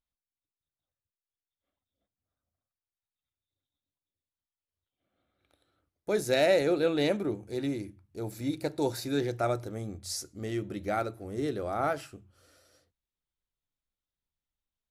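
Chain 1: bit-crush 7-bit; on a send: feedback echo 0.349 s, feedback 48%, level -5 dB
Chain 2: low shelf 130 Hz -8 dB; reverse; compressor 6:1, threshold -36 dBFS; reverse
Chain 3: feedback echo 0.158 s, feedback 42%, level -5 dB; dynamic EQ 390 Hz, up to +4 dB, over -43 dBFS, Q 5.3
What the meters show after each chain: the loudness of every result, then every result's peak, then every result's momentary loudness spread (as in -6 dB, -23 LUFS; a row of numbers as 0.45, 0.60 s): -29.5, -40.5, -29.0 LUFS; -11.0, -25.5, -10.0 dBFS; 13, 5, 13 LU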